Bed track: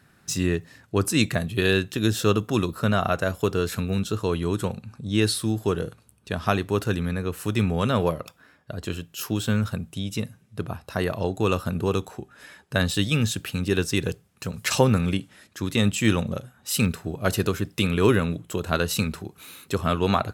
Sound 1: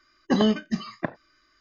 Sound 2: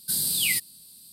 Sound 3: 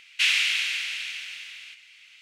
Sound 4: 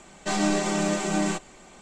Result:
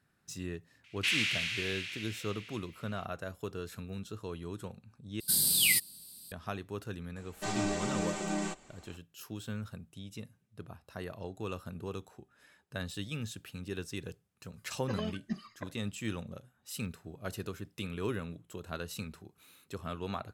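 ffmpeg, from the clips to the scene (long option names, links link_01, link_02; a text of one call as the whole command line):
ffmpeg -i bed.wav -i cue0.wav -i cue1.wav -i cue2.wav -i cue3.wav -filter_complex "[0:a]volume=-16dB[link_01];[3:a]equalizer=frequency=210:width=0.33:gain=15[link_02];[1:a]aphaser=in_gain=1:out_gain=1:delay=2:decay=0.56:speed=1.4:type=sinusoidal[link_03];[link_01]asplit=2[link_04][link_05];[link_04]atrim=end=5.204[link_06];[2:a]atrim=end=1.12,asetpts=PTS-STARTPTS,volume=-1.5dB[link_07];[link_05]atrim=start=6.316[link_08];[link_02]atrim=end=2.21,asetpts=PTS-STARTPTS,volume=-9.5dB,afade=type=in:duration=0.004:curve=hsin,afade=type=out:start_time=2.206:duration=0.004:curve=hsin,adelay=840[link_09];[4:a]atrim=end=1.81,asetpts=PTS-STARTPTS,volume=-9dB,afade=type=in:duration=0.004:curve=hsin,afade=type=out:start_time=1.806:duration=0.004:curve=hsin,adelay=7160[link_10];[link_03]atrim=end=1.6,asetpts=PTS-STARTPTS,volume=-16dB,afade=type=in:duration=0.004:curve=hsin,afade=type=out:start_time=1.596:duration=0.004:curve=hsin,adelay=14580[link_11];[link_06][link_07]acrossfade=duration=0.004:curve1=hsin:curve2=hsin[link_12];[link_12][link_08]acrossfade=duration=0.004:curve1=hsin:curve2=hsin[link_13];[link_13][link_09][link_10][link_11]amix=inputs=4:normalize=0" out.wav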